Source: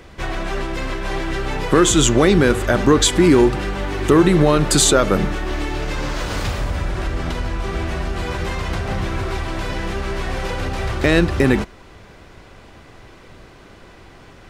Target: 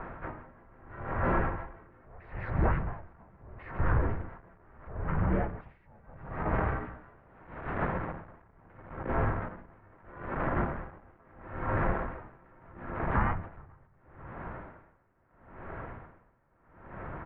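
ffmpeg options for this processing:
-filter_complex "[0:a]aemphasis=mode=production:type=50fm,bandreject=f=60:t=h:w=6,bandreject=f=120:t=h:w=6,bandreject=f=180:t=h:w=6,bandreject=f=240:t=h:w=6,bandreject=f=300:t=h:w=6,bandreject=f=360:t=h:w=6,bandreject=f=420:t=h:w=6,bandreject=f=480:t=h:w=6,bandreject=f=540:t=h:w=6,bandreject=f=600:t=h:w=6,acompressor=threshold=0.0794:ratio=10,asplit=3[s0][s1][s2];[s1]asetrate=33038,aresample=44100,atempo=1.33484,volume=0.794[s3];[s2]asetrate=37084,aresample=44100,atempo=1.18921,volume=0.631[s4];[s0][s3][s4]amix=inputs=3:normalize=0,asoftclip=type=tanh:threshold=0.0708,asetrate=37044,aresample=44100,aecho=1:1:149|496:0.211|0.188,highpass=f=170:t=q:w=0.5412,highpass=f=170:t=q:w=1.307,lowpass=f=2100:t=q:w=0.5176,lowpass=f=2100:t=q:w=0.7071,lowpass=f=2100:t=q:w=1.932,afreqshift=-310,aeval=exprs='val(0)*pow(10,-31*(0.5-0.5*cos(2*PI*0.76*n/s))/20)':c=same,volume=1.58"

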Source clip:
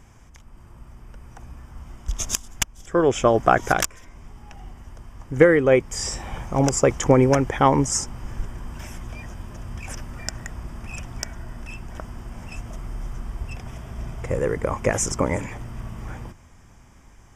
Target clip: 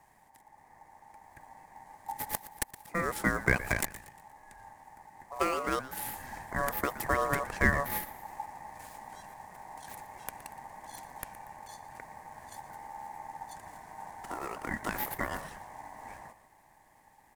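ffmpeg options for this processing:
-filter_complex "[0:a]acrossover=split=640|2300[s0][s1][s2];[s2]aeval=exprs='abs(val(0))':c=same[s3];[s0][s1][s3]amix=inputs=3:normalize=0,lowshelf=f=160:g=-7.5,asplit=5[s4][s5][s6][s7][s8];[s5]adelay=118,afreqshift=69,volume=0.15[s9];[s6]adelay=236,afreqshift=138,volume=0.0646[s10];[s7]adelay=354,afreqshift=207,volume=0.0275[s11];[s8]adelay=472,afreqshift=276,volume=0.0119[s12];[s4][s9][s10][s11][s12]amix=inputs=5:normalize=0,asplit=2[s13][s14];[s14]acrusher=bits=5:mode=log:mix=0:aa=0.000001,volume=0.631[s15];[s13][s15]amix=inputs=2:normalize=0,equalizer=f=125:t=o:w=1:g=-4,equalizer=f=500:t=o:w=1:g=-12,equalizer=f=1000:t=o:w=1:g=7,equalizer=f=2000:t=o:w=1:g=-10,equalizer=f=8000:t=o:w=1:g=8,aeval=exprs='val(0)*sin(2*PI*850*n/s)':c=same,volume=0.398"

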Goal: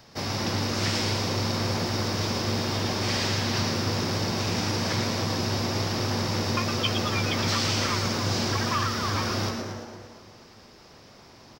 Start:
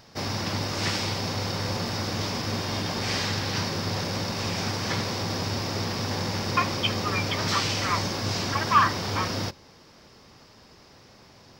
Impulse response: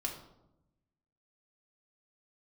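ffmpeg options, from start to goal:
-filter_complex "[0:a]asplit=2[s0][s1];[s1]adelay=281,lowpass=f=970:p=1,volume=0.398,asplit=2[s2][s3];[s3]adelay=281,lowpass=f=970:p=1,volume=0.35,asplit=2[s4][s5];[s5]adelay=281,lowpass=f=970:p=1,volume=0.35,asplit=2[s6][s7];[s7]adelay=281,lowpass=f=970:p=1,volume=0.35[s8];[s2][s4][s6][s8]amix=inputs=4:normalize=0[s9];[s0][s9]amix=inputs=2:normalize=0,acrossover=split=150|3000[s10][s11][s12];[s11]acompressor=threshold=0.0398:ratio=6[s13];[s10][s13][s12]amix=inputs=3:normalize=0,asplit=2[s14][s15];[s15]asplit=7[s16][s17][s18][s19][s20][s21][s22];[s16]adelay=113,afreqshift=130,volume=0.501[s23];[s17]adelay=226,afreqshift=260,volume=0.269[s24];[s18]adelay=339,afreqshift=390,volume=0.146[s25];[s19]adelay=452,afreqshift=520,volume=0.0785[s26];[s20]adelay=565,afreqshift=650,volume=0.0427[s27];[s21]adelay=678,afreqshift=780,volume=0.0229[s28];[s22]adelay=791,afreqshift=910,volume=0.0124[s29];[s23][s24][s25][s26][s27][s28][s29]amix=inputs=7:normalize=0[s30];[s14][s30]amix=inputs=2:normalize=0"

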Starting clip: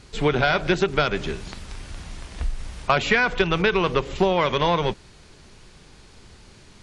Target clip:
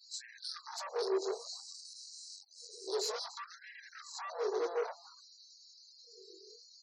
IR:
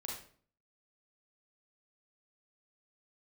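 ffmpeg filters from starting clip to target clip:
-filter_complex "[0:a]afftfilt=real='re':imag='-im':win_size=2048:overlap=0.75,afftfilt=real='re*(1-between(b*sr/4096,490,3900))':imag='im*(1-between(b*sr/4096,490,3900))':win_size=4096:overlap=0.75,lowpass=f=8900:w=0.5412,lowpass=f=8900:w=1.3066,adynamicequalizer=threshold=0.00178:dfrequency=2900:dqfactor=1.5:tfrequency=2900:tqfactor=1.5:attack=5:release=100:ratio=0.375:range=2.5:mode=cutabove:tftype=bell,alimiter=level_in=1.12:limit=0.0631:level=0:latency=1:release=15,volume=0.891,areverse,acompressor=mode=upward:threshold=0.00251:ratio=2.5,areverse,asoftclip=type=tanh:threshold=0.0141,lowshelf=f=320:g=2,asplit=2[s0][s1];[s1]adelay=292,lowpass=f=3500:p=1,volume=0.188,asplit=2[s2][s3];[s3]adelay=292,lowpass=f=3500:p=1,volume=0.36,asplit=2[s4][s5];[s5]adelay=292,lowpass=f=3500:p=1,volume=0.36[s6];[s0][s2][s4][s6]amix=inputs=4:normalize=0,afftfilt=real='re*gte(hypot(re,im),0.00141)':imag='im*gte(hypot(re,im),0.00141)':win_size=1024:overlap=0.75,afftfilt=real='re*gte(b*sr/1024,340*pow(1600/340,0.5+0.5*sin(2*PI*0.58*pts/sr)))':imag='im*gte(b*sr/1024,340*pow(1600/340,0.5+0.5*sin(2*PI*0.58*pts/sr)))':win_size=1024:overlap=0.75,volume=2.37"

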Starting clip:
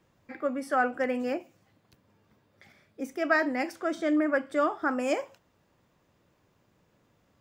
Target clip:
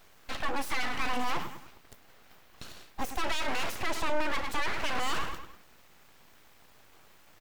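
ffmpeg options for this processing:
-filter_complex "[0:a]aemphasis=mode=production:type=bsi,asplit=2[s0][s1];[s1]adelay=103,lowpass=f=3500:p=1,volume=0.158,asplit=2[s2][s3];[s3]adelay=103,lowpass=f=3500:p=1,volume=0.4,asplit=2[s4][s5];[s5]adelay=103,lowpass=f=3500:p=1,volume=0.4,asplit=2[s6][s7];[s7]adelay=103,lowpass=f=3500:p=1,volume=0.4[s8];[s2][s4][s6][s8]amix=inputs=4:normalize=0[s9];[s0][s9]amix=inputs=2:normalize=0,acompressor=threshold=0.0447:ratio=6,asplit=2[s10][s11];[s11]highpass=f=720:p=1,volume=17.8,asoftclip=type=tanh:threshold=0.119[s12];[s10][s12]amix=inputs=2:normalize=0,lowpass=f=2600:p=1,volume=0.501,lowshelf=f=450:g=7.5,aeval=exprs='abs(val(0))':c=same,volume=0.668"

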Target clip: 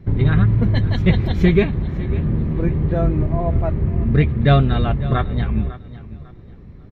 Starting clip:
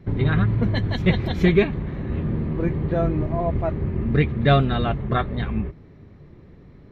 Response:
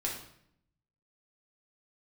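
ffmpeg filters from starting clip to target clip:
-af "lowshelf=f=140:g=9,aecho=1:1:549|1098|1647:0.141|0.0381|0.0103"

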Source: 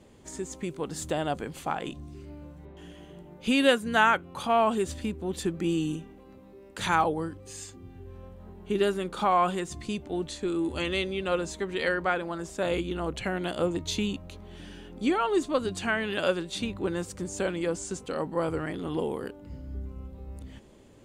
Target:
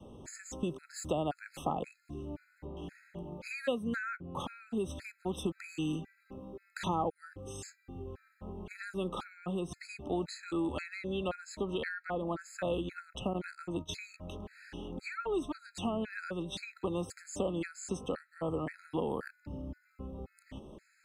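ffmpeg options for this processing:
-filter_complex "[0:a]asettb=1/sr,asplit=3[s0][s1][s2];[s0]atrim=end=13.334[s3];[s1]atrim=start=13.33:end=13.94,asetpts=PTS-STARTPTS,afade=t=in:d=0.004:c=qsin,afade=t=out:st=0.606:d=0.004:c=qsin,agate=range=0.141:threshold=0.0251:ratio=16:detection=peak[s4];[s2]atrim=start=13.936[s5];[s3][s4]acrossfade=d=0.004:c1=hsin:c2=qsin[s6];[s6][s5]acrossfade=d=0.004:c1=qsin:c2=hsin,highshelf=f=2400:g=-9,acrossover=split=170|630[s7][s8][s9];[s7]acompressor=threshold=0.00316:ratio=4[s10];[s8]acompressor=threshold=0.0141:ratio=4[s11];[s9]acompressor=threshold=0.00794:ratio=4[s12];[s10][s11][s12]amix=inputs=3:normalize=0,adynamicequalizer=threshold=0.00282:dfrequency=390:dqfactor=2.6:tfrequency=390:tqfactor=2.6:attack=5:release=100:ratio=0.375:range=2:mode=cutabove:tftype=bell,afftfilt=real='re*gt(sin(2*PI*1.9*pts/sr)*(1-2*mod(floor(b*sr/1024/1300),2)),0)':imag='im*gt(sin(2*PI*1.9*pts/sr)*(1-2*mod(floor(b*sr/1024/1300),2)),0)':win_size=1024:overlap=0.75,volume=1.78"

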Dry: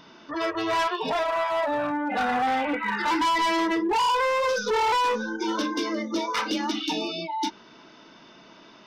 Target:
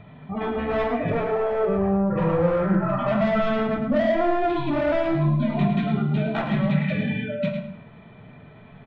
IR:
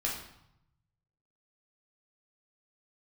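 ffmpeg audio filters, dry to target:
-filter_complex "[0:a]highshelf=f=8300:g=-8.5,asetrate=29433,aresample=44100,atempo=1.49831,bass=f=250:g=11,treble=f=4000:g=-12,aecho=1:1:107:0.398,asplit=2[s0][s1];[1:a]atrim=start_sample=2205,afade=t=out:st=0.37:d=0.01,atrim=end_sample=16758[s2];[s1][s2]afir=irnorm=-1:irlink=0,volume=0.596[s3];[s0][s3]amix=inputs=2:normalize=0,volume=0.596"

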